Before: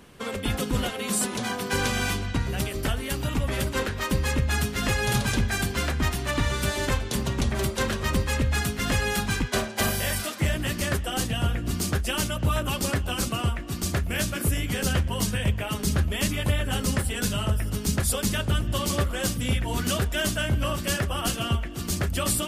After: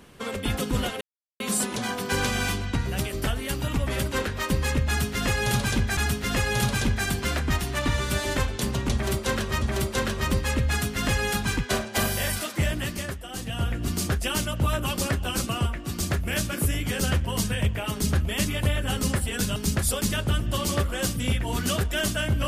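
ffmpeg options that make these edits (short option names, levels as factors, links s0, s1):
-filter_complex "[0:a]asplit=7[s0][s1][s2][s3][s4][s5][s6];[s0]atrim=end=1.01,asetpts=PTS-STARTPTS,afade=t=out:st=1.006:d=0.004:c=hsin,apad=pad_dur=0.39[s7];[s1]atrim=start=1.01:end=5.582,asetpts=PTS-STARTPTS,afade=t=in:d=0.004:c=hsin[s8];[s2]atrim=start=4.488:end=8.142[s9];[s3]atrim=start=7.448:end=11,asetpts=PTS-STARTPTS,afade=t=out:st=3.102:d=0.45:silence=0.354813[s10];[s4]atrim=start=11:end=11.15,asetpts=PTS-STARTPTS,volume=0.355[s11];[s5]atrim=start=11.15:end=17.392,asetpts=PTS-STARTPTS,afade=t=in:d=0.45:silence=0.354813[s12];[s6]atrim=start=17.768[s13];[s7][s8]concat=n=2:v=0:a=1[s14];[s14][s9]acrossfade=d=0.004:c1=hsin:c2=hsin[s15];[s10][s11][s12]concat=n=3:v=0:a=1[s16];[s15][s16]acrossfade=d=0.004:c1=hsin:c2=hsin[s17];[s17][s13]acrossfade=d=0.004:c1=hsin:c2=hsin"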